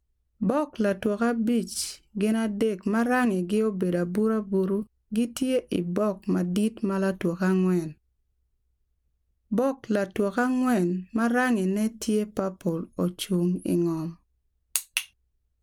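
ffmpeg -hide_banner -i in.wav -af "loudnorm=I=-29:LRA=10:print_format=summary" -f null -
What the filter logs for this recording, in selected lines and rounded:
Input Integrated:    -26.7 LUFS
Input True Peak:      -7.0 dBTP
Input LRA:             3.3 LU
Input Threshold:     -36.9 LUFS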